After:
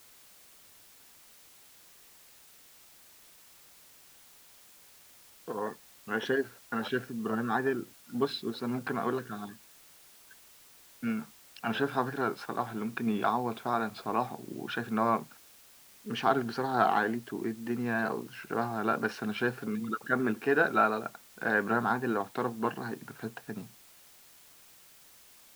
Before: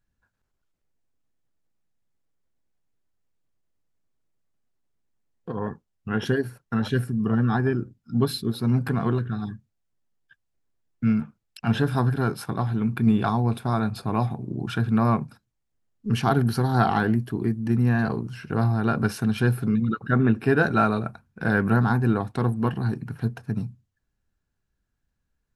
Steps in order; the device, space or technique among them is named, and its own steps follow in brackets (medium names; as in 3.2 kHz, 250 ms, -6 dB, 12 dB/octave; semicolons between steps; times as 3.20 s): dictaphone (band-pass 360–3800 Hz; level rider gain up to 6.5 dB; wow and flutter; white noise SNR 23 dB); trim -8 dB